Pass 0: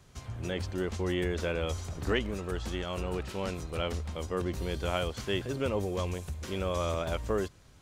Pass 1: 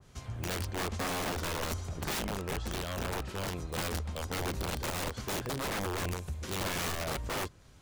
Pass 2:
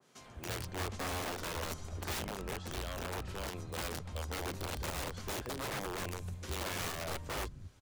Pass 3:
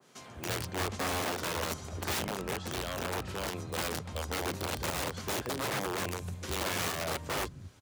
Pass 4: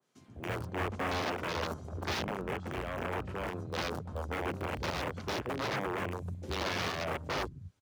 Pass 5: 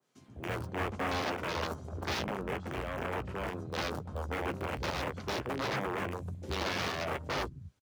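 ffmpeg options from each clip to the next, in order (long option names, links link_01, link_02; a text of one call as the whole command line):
ffmpeg -i in.wav -af "aeval=exprs='(mod(25.1*val(0)+1,2)-1)/25.1':channel_layout=same,adynamicequalizer=threshold=0.00501:dfrequency=1900:dqfactor=0.7:tfrequency=1900:tqfactor=0.7:attack=5:release=100:ratio=0.375:range=2:mode=cutabove:tftype=highshelf" out.wav
ffmpeg -i in.wav -filter_complex "[0:a]acrossover=split=180[link_01][link_02];[link_01]adelay=200[link_03];[link_03][link_02]amix=inputs=2:normalize=0,volume=-4dB" out.wav
ffmpeg -i in.wav -af "highpass=92,volume=5.5dB" out.wav
ffmpeg -i in.wav -af "afwtdn=0.00891" out.wav
ffmpeg -i in.wav -filter_complex "[0:a]asplit=2[link_01][link_02];[link_02]adelay=15,volume=-12.5dB[link_03];[link_01][link_03]amix=inputs=2:normalize=0" out.wav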